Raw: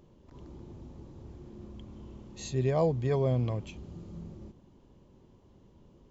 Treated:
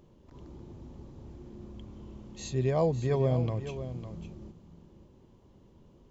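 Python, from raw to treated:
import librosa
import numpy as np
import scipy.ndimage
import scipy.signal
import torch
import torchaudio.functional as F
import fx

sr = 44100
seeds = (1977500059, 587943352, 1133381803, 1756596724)

y = x + 10.0 ** (-11.0 / 20.0) * np.pad(x, (int(554 * sr / 1000.0), 0))[:len(x)]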